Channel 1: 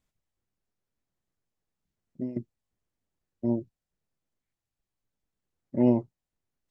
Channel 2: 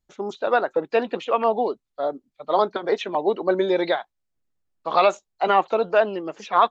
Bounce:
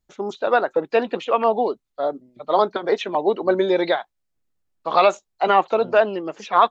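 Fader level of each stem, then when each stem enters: -20.0 dB, +2.0 dB; 0.00 s, 0.00 s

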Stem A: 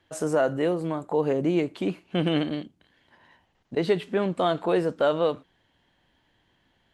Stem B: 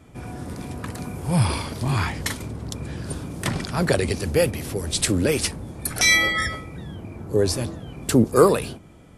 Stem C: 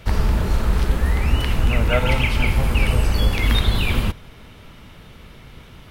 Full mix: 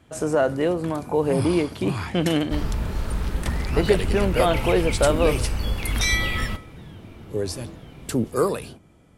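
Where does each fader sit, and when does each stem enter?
+2.5 dB, -6.5 dB, -7.5 dB; 0.00 s, 0.00 s, 2.45 s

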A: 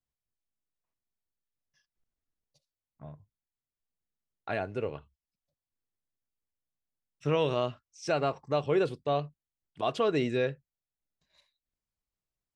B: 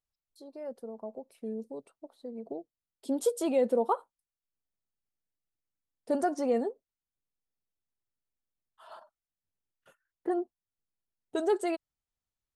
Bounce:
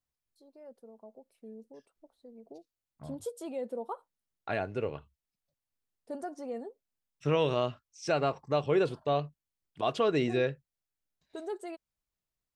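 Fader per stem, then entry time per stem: 0.0 dB, -10.5 dB; 0.00 s, 0.00 s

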